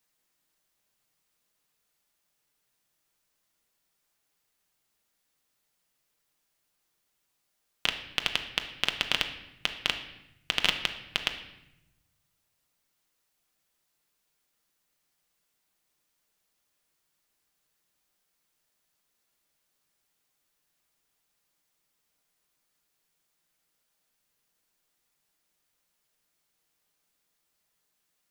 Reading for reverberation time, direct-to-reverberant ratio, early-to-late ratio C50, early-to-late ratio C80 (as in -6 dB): 0.85 s, 5.0 dB, 9.5 dB, 12.0 dB